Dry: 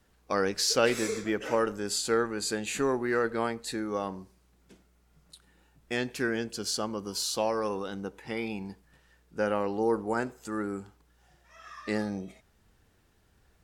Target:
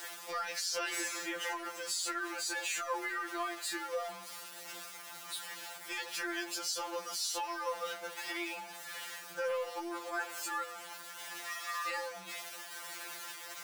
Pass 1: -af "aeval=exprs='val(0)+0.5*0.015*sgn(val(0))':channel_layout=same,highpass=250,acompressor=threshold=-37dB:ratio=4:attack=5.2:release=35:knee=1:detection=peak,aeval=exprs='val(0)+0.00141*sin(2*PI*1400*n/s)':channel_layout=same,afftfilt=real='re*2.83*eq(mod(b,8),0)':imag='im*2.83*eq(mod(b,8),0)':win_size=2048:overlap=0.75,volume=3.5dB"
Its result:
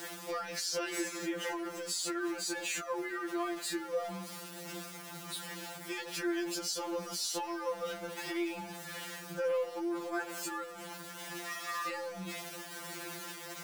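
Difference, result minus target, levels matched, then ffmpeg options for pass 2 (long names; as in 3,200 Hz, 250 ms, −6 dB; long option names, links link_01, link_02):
250 Hz band +8.5 dB
-af "aeval=exprs='val(0)+0.5*0.015*sgn(val(0))':channel_layout=same,highpass=740,acompressor=threshold=-37dB:ratio=4:attack=5.2:release=35:knee=1:detection=peak,aeval=exprs='val(0)+0.00141*sin(2*PI*1400*n/s)':channel_layout=same,afftfilt=real='re*2.83*eq(mod(b,8),0)':imag='im*2.83*eq(mod(b,8),0)':win_size=2048:overlap=0.75,volume=3.5dB"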